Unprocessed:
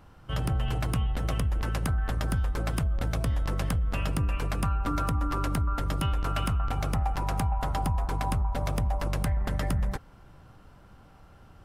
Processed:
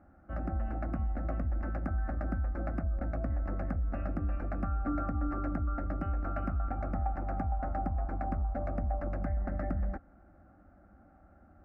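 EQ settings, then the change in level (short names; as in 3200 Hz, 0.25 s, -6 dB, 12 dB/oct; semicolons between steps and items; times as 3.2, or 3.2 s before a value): HPF 50 Hz; LPF 1100 Hz 12 dB/oct; fixed phaser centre 660 Hz, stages 8; 0.0 dB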